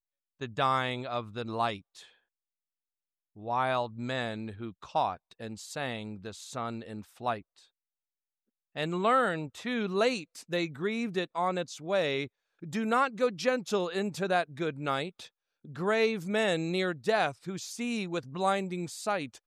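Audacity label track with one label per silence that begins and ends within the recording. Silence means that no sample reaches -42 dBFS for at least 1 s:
2.030000	3.380000	silence
7.410000	8.760000	silence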